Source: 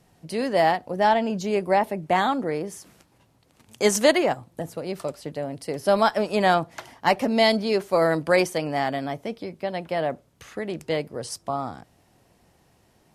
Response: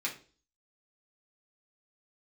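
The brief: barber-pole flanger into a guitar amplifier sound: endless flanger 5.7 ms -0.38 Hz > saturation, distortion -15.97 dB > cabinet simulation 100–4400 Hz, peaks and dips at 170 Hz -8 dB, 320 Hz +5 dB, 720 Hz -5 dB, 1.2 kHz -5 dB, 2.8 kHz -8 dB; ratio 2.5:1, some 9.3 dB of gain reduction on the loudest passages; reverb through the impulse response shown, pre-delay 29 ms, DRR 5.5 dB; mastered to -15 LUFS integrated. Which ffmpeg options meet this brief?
-filter_complex "[0:a]acompressor=threshold=0.0398:ratio=2.5,asplit=2[s0][s1];[1:a]atrim=start_sample=2205,adelay=29[s2];[s1][s2]afir=irnorm=-1:irlink=0,volume=0.316[s3];[s0][s3]amix=inputs=2:normalize=0,asplit=2[s4][s5];[s5]adelay=5.7,afreqshift=-0.38[s6];[s4][s6]amix=inputs=2:normalize=1,asoftclip=threshold=0.0596,highpass=100,equalizer=f=170:t=q:w=4:g=-8,equalizer=f=320:t=q:w=4:g=5,equalizer=f=720:t=q:w=4:g=-5,equalizer=f=1200:t=q:w=4:g=-5,equalizer=f=2800:t=q:w=4:g=-8,lowpass=f=4400:w=0.5412,lowpass=f=4400:w=1.3066,volume=11.2"

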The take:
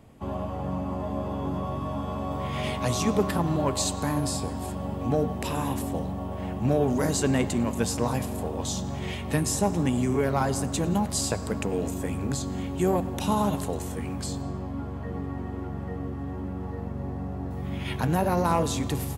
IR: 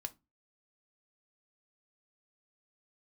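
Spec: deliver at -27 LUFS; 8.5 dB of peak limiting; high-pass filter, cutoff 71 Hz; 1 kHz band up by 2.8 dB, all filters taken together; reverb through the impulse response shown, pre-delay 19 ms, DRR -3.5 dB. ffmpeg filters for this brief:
-filter_complex "[0:a]highpass=71,equalizer=f=1000:t=o:g=3.5,alimiter=limit=0.141:level=0:latency=1,asplit=2[s0][s1];[1:a]atrim=start_sample=2205,adelay=19[s2];[s1][s2]afir=irnorm=-1:irlink=0,volume=2[s3];[s0][s3]amix=inputs=2:normalize=0,volume=0.75"

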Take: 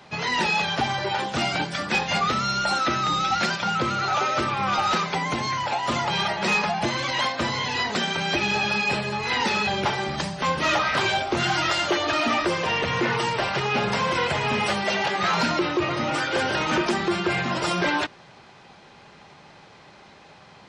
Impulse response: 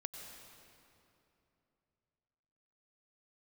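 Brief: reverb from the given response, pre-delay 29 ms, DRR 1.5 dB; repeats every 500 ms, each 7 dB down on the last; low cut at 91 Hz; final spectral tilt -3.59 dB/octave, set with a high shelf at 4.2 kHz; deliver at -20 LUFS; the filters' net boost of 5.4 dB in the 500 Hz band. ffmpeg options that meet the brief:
-filter_complex "[0:a]highpass=91,equalizer=f=500:t=o:g=7,highshelf=f=4200:g=4.5,aecho=1:1:500|1000|1500|2000|2500:0.447|0.201|0.0905|0.0407|0.0183,asplit=2[s0][s1];[1:a]atrim=start_sample=2205,adelay=29[s2];[s1][s2]afir=irnorm=-1:irlink=0,volume=1.06[s3];[s0][s3]amix=inputs=2:normalize=0,volume=0.794"

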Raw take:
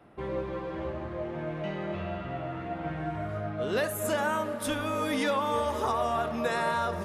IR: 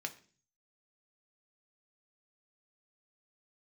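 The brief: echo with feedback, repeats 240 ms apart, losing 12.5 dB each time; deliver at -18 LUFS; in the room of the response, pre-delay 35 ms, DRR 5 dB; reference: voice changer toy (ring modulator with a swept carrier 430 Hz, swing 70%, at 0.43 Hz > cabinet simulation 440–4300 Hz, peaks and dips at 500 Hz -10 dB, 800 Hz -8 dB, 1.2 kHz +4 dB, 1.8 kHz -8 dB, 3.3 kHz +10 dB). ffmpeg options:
-filter_complex "[0:a]aecho=1:1:240|480|720:0.237|0.0569|0.0137,asplit=2[s0][s1];[1:a]atrim=start_sample=2205,adelay=35[s2];[s1][s2]afir=irnorm=-1:irlink=0,volume=0.562[s3];[s0][s3]amix=inputs=2:normalize=0,aeval=exprs='val(0)*sin(2*PI*430*n/s+430*0.7/0.43*sin(2*PI*0.43*n/s))':c=same,highpass=440,equalizer=f=500:t=q:w=4:g=-10,equalizer=f=800:t=q:w=4:g=-8,equalizer=f=1200:t=q:w=4:g=4,equalizer=f=1800:t=q:w=4:g=-8,equalizer=f=3300:t=q:w=4:g=10,lowpass=f=4300:w=0.5412,lowpass=f=4300:w=1.3066,volume=7.5"

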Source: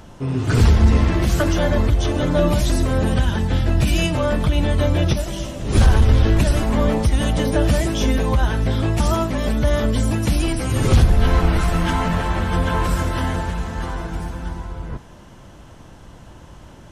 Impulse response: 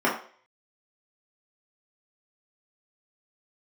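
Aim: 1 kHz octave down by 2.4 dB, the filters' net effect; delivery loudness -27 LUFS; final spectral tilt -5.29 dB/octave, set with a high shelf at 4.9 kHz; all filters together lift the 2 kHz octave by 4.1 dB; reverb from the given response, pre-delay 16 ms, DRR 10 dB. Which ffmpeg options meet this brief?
-filter_complex "[0:a]equalizer=f=1000:t=o:g=-5,equalizer=f=2000:t=o:g=6,highshelf=f=4900:g=6,asplit=2[s0][s1];[1:a]atrim=start_sample=2205,adelay=16[s2];[s1][s2]afir=irnorm=-1:irlink=0,volume=0.0473[s3];[s0][s3]amix=inputs=2:normalize=0,volume=0.398"

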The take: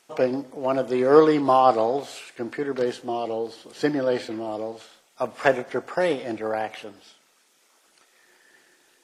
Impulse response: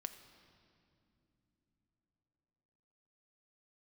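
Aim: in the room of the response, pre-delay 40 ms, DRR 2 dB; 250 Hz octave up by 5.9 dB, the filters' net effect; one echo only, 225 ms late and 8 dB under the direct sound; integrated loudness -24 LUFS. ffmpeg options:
-filter_complex "[0:a]equalizer=f=250:t=o:g=7.5,aecho=1:1:225:0.398,asplit=2[s0][s1];[1:a]atrim=start_sample=2205,adelay=40[s2];[s1][s2]afir=irnorm=-1:irlink=0,volume=1.12[s3];[s0][s3]amix=inputs=2:normalize=0,volume=0.562"

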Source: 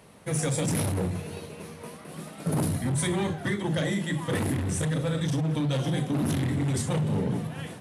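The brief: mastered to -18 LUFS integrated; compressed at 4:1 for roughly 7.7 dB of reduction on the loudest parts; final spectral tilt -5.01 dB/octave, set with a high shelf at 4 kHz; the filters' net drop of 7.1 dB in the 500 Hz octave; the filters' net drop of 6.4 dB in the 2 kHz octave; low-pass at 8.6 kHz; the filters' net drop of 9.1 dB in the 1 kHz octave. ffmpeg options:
-af "lowpass=8600,equalizer=f=500:t=o:g=-7,equalizer=f=1000:t=o:g=-8.5,equalizer=f=2000:t=o:g=-6.5,highshelf=f=4000:g=8,acompressor=threshold=0.02:ratio=4,volume=8.41"

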